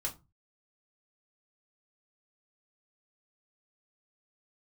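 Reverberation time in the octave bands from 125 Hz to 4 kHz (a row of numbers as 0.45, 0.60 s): 0.50, 0.35, 0.25, 0.25, 0.20, 0.15 s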